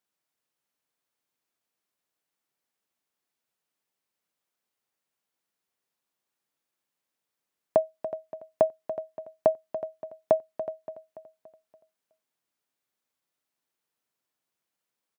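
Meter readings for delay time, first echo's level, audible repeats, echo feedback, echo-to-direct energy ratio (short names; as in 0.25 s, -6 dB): 0.286 s, -12.0 dB, 4, 48%, -11.0 dB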